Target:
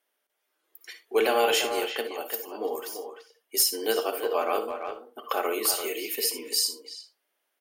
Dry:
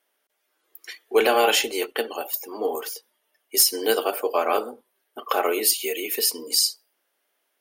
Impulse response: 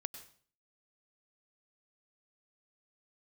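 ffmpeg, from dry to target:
-filter_complex "[0:a]asplit=2[a][b];[b]adelay=340,highpass=300,lowpass=3.4k,asoftclip=type=hard:threshold=-13.5dB,volume=-7dB[c];[a][c]amix=inputs=2:normalize=0[d];[1:a]atrim=start_sample=2205,afade=t=out:st=0.18:d=0.01,atrim=end_sample=8379,asetrate=74970,aresample=44100[e];[d][e]afir=irnorm=-1:irlink=0,volume=2dB"

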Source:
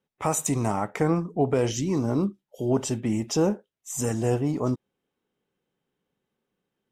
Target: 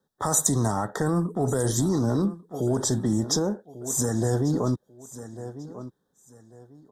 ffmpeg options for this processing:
-filter_complex "[0:a]asettb=1/sr,asplit=3[a][b][c];[a]atrim=end=1.064[d];[b]atrim=start=1.06:end=1.89,asetpts=PTS-STARTPTS,afade=t=in:d=0.004:c=qsin,afade=t=out:st=0.826:d=0.004:c=qsin,highshelf=f=7.4k:t=q:w=3:g=7[e];[c]atrim=start=1.886[f];[d][e]acrossfade=d=0.004:c1=hsin:c2=qsin[g];[g][f]acrossfade=d=0.004:c1=qsin:c2=hsin,asplit=2[h][i];[i]aecho=0:1:1143|2286:0.112|0.0281[j];[h][j]amix=inputs=2:normalize=0,asettb=1/sr,asplit=3[k][l][m];[k]atrim=end=3.384[n];[l]atrim=start=3.38:end=4.23,asetpts=PTS-STARTPTS,afade=t=in:d=0.004:c=qsin,afade=t=out:st=0.846:d=0.004:c=qsin,acompressor=threshold=-26dB:ratio=6[o];[m]atrim=start=4.226[p];[n][o]acrossfade=d=0.004:c1=hsin:c2=qsin[q];[q][p]acrossfade=d=0.004:c1=qsin:c2=hsin,acrossover=split=100|1900[r][s][t];[s]alimiter=limit=-23.5dB:level=0:latency=1:release=50[u];[r][u][t]amix=inputs=3:normalize=0,asuperstop=centerf=2500:order=12:qfactor=1.7,volume=6dB"

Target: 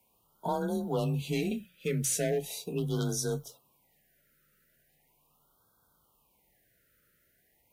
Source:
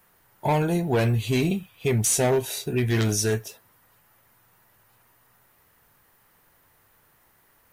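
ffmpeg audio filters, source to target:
-af "bandreject=f=50:t=h:w=6,bandreject=f=100:t=h:w=6,bandreject=f=150:t=h:w=6,afreqshift=29,afftfilt=real='re*(1-between(b*sr/1024,880*pow(2300/880,0.5+0.5*sin(2*PI*0.39*pts/sr))/1.41,880*pow(2300/880,0.5+0.5*sin(2*PI*0.39*pts/sr))*1.41))':imag='im*(1-between(b*sr/1024,880*pow(2300/880,0.5+0.5*sin(2*PI*0.39*pts/sr))/1.41,880*pow(2300/880,0.5+0.5*sin(2*PI*0.39*pts/sr))*1.41))':win_size=1024:overlap=0.75,volume=-8dB"

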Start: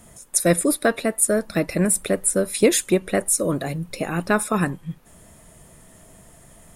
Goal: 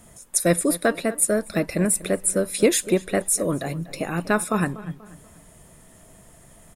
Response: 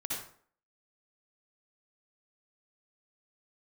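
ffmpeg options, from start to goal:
-filter_complex "[0:a]asplit=2[a][b];[b]adelay=242,lowpass=f=3.5k:p=1,volume=-17dB,asplit=2[c][d];[d]adelay=242,lowpass=f=3.5k:p=1,volume=0.4,asplit=2[e][f];[f]adelay=242,lowpass=f=3.5k:p=1,volume=0.4[g];[a][c][e][g]amix=inputs=4:normalize=0,volume=-1.5dB"

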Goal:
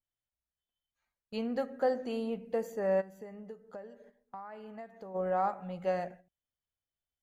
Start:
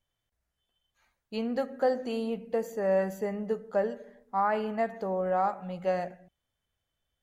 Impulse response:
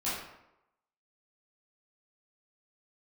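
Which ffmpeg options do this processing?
-filter_complex "[0:a]agate=range=-12dB:threshold=-48dB:ratio=16:detection=peak,asplit=3[a][b][c];[a]afade=t=out:st=3:d=0.02[d];[b]acompressor=threshold=-41dB:ratio=6,afade=t=in:st=3:d=0.02,afade=t=out:st=5.14:d=0.02[e];[c]afade=t=in:st=5.14:d=0.02[f];[d][e][f]amix=inputs=3:normalize=0,adynamicequalizer=threshold=0.00355:dfrequency=3100:dqfactor=0.7:tfrequency=3100:tqfactor=0.7:attack=5:release=100:ratio=0.375:range=2:mode=cutabove:tftype=highshelf,volume=-3dB"

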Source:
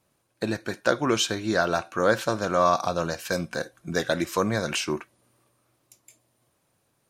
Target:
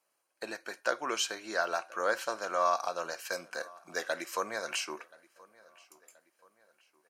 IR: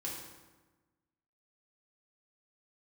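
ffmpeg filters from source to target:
-filter_complex "[0:a]highpass=590,bandreject=f=3.6k:w=5.9,asplit=2[a][b];[b]adelay=1028,lowpass=f=4.5k:p=1,volume=-23.5dB,asplit=2[c][d];[d]adelay=1028,lowpass=f=4.5k:p=1,volume=0.46,asplit=2[e][f];[f]adelay=1028,lowpass=f=4.5k:p=1,volume=0.46[g];[a][c][e][g]amix=inputs=4:normalize=0,volume=-5.5dB"

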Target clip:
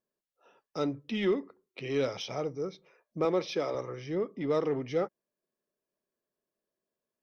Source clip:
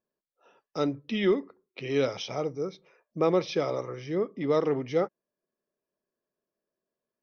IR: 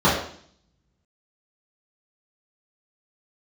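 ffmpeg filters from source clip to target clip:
-filter_complex "[0:a]asplit=2[a][b];[b]asoftclip=type=tanh:threshold=-29.5dB,volume=-6.5dB[c];[a][c]amix=inputs=2:normalize=0,asettb=1/sr,asplit=3[d][e][f];[d]atrim=end=3.254[g];[e]atrim=start=3.25:end=3.75,asetpts=PTS-STARTPTS,afade=t=in:d=0.004:c=qsin,afade=t=out:st=0.496:d=0.004:c=qsin,highpass=190[h];[f]atrim=start=3.746[i];[g][h]acrossfade=d=0.004:c1=hsin:c2=qsin[j];[j][i]acrossfade=d=0.004:c1=qsin:c2=hsin,volume=-5dB"

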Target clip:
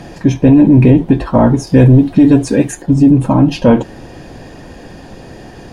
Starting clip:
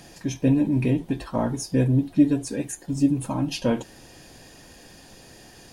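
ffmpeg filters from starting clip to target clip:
-af "asetnsamples=n=441:p=0,asendcmd='1.67 lowpass f 2400;2.82 lowpass f 1000',lowpass=f=1.2k:p=1,apsyclip=19dB,volume=-1.5dB"

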